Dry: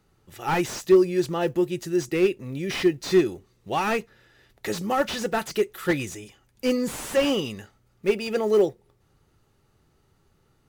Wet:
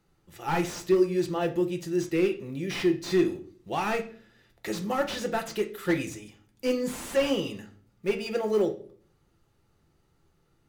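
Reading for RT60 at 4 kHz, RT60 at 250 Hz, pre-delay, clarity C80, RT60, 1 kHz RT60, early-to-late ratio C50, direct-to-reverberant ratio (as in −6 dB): 0.35 s, 0.70 s, 6 ms, 18.0 dB, 0.50 s, 0.40 s, 13.5 dB, 5.0 dB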